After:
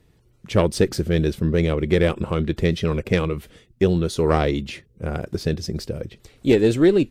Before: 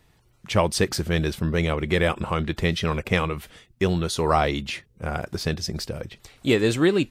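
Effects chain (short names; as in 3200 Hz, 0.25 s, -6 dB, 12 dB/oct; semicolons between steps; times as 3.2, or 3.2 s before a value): added harmonics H 2 -6 dB, 4 -26 dB, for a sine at -5.5 dBFS; resonant low shelf 600 Hz +6.5 dB, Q 1.5; gain -3.5 dB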